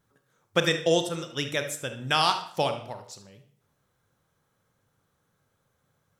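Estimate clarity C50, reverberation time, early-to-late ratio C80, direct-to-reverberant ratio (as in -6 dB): 10.0 dB, 0.60 s, 14.5 dB, 7.0 dB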